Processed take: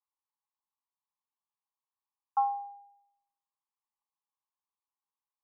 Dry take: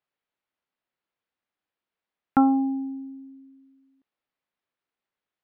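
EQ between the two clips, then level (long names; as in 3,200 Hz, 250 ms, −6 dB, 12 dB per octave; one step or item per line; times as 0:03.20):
Chebyshev high-pass with heavy ripple 800 Hz, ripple 3 dB
elliptic low-pass filter 1,100 Hz
0.0 dB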